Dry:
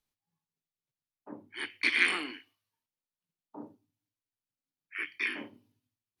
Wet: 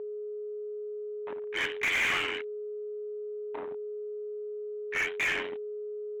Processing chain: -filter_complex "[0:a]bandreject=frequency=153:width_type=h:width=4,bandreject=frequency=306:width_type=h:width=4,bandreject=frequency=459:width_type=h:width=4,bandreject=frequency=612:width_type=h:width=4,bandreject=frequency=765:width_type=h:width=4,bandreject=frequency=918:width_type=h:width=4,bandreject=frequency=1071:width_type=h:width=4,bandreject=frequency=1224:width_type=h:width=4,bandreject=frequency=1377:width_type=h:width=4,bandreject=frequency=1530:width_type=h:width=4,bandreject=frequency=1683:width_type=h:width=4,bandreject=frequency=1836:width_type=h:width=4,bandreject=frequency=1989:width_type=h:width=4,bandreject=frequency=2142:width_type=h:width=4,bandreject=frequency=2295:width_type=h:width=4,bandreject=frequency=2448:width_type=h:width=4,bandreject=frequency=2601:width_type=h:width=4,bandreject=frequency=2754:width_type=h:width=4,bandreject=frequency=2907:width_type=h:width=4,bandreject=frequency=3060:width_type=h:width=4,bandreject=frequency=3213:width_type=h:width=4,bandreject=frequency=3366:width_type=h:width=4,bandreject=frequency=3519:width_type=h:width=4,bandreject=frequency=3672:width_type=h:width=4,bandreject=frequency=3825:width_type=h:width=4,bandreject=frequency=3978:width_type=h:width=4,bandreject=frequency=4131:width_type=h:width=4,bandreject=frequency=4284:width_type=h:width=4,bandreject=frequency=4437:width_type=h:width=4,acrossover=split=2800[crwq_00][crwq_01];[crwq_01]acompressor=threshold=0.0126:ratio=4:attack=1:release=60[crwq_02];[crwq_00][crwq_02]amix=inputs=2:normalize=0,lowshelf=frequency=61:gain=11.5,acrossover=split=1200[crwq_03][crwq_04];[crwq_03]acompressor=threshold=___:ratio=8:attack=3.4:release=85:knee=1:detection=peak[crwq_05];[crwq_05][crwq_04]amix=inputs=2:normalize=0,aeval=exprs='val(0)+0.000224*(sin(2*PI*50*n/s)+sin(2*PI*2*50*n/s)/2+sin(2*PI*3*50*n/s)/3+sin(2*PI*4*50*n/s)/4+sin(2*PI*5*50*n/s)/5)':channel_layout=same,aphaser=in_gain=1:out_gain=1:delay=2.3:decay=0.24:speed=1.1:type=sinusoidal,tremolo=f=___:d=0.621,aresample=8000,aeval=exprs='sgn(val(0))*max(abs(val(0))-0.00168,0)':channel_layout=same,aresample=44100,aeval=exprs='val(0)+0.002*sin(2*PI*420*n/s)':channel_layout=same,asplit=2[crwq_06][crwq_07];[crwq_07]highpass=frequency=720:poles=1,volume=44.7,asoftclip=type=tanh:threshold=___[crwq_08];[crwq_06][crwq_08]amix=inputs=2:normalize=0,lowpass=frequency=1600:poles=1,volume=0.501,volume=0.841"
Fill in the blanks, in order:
0.00251, 89, 0.188